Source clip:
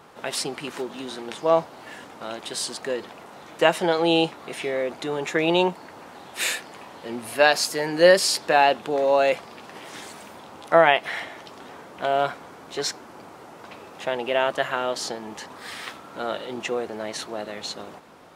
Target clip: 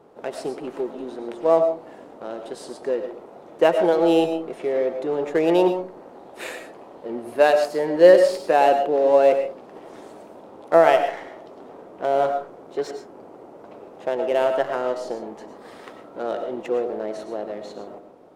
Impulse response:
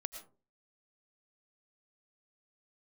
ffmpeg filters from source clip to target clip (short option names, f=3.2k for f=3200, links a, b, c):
-filter_complex "[0:a]equalizer=f=440:w=0.61:g=12.5,asplit=2[a][b];[b]adynamicsmooth=sensitivity=2:basefreq=670,volume=2dB[c];[a][c]amix=inputs=2:normalize=0[d];[1:a]atrim=start_sample=2205[e];[d][e]afir=irnorm=-1:irlink=0,volume=-12.5dB"